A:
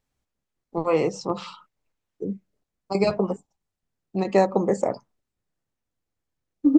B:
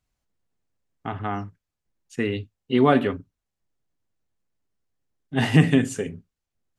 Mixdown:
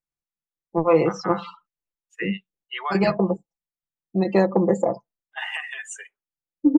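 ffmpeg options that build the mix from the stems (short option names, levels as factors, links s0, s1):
-filter_complex "[0:a]aecho=1:1:5.9:0.6,volume=0.631[s0];[1:a]highpass=f=900:w=0.5412,highpass=f=900:w=1.3066,equalizer=f=4400:w=3.2:g=-9,alimiter=limit=0.0944:level=0:latency=1:release=119,volume=0.794[s1];[s0][s1]amix=inputs=2:normalize=0,afftdn=nr=21:nf=-39,acontrast=35"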